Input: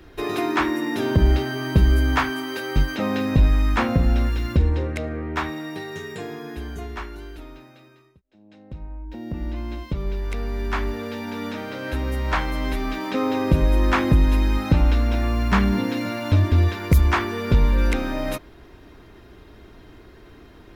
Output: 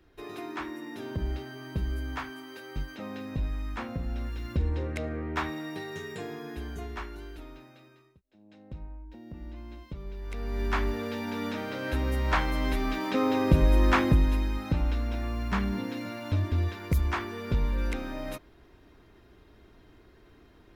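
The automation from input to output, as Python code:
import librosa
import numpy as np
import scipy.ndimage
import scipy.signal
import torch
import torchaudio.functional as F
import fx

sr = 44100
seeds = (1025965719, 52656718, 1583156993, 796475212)

y = fx.gain(x, sr, db=fx.line((4.07, -15.0), (5.03, -5.0), (8.79, -5.0), (9.22, -13.0), (10.14, -13.0), (10.62, -3.0), (13.96, -3.0), (14.54, -10.0)))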